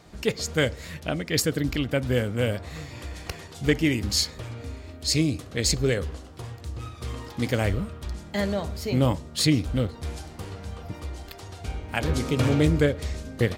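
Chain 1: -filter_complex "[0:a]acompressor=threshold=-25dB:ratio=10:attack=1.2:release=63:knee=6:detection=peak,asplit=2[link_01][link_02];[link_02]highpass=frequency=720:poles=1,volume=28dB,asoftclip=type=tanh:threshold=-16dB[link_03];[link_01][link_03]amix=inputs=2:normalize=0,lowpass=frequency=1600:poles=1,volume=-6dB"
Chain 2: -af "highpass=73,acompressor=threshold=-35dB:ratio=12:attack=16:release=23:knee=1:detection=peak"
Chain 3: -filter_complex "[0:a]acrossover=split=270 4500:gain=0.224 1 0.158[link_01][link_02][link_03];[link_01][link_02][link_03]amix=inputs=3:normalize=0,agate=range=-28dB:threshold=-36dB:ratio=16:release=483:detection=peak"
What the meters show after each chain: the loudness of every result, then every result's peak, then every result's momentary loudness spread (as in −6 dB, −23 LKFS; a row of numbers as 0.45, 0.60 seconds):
−27.0, −36.0, −29.5 LKFS; −18.0, −15.0, −9.5 dBFS; 5, 6, 12 LU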